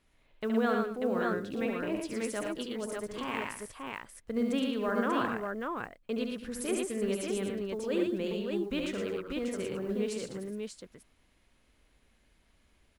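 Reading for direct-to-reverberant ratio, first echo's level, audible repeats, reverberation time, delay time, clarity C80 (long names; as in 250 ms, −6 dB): no reverb audible, −5.5 dB, 4, no reverb audible, 71 ms, no reverb audible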